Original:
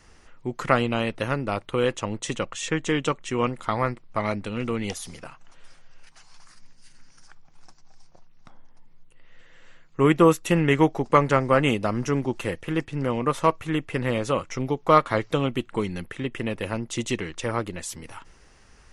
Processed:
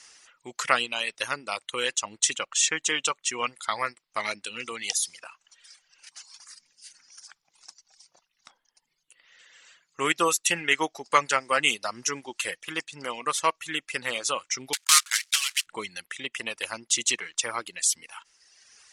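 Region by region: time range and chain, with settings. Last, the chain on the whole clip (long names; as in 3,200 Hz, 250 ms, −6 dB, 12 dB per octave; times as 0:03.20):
0:14.73–0:15.67: one scale factor per block 3 bits + high-pass filter 1,400 Hz 24 dB per octave + multiband upward and downward compressor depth 40%
whole clip: meter weighting curve ITU-R 468; reverb reduction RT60 1.3 s; high-shelf EQ 8,500 Hz +8 dB; level −2.5 dB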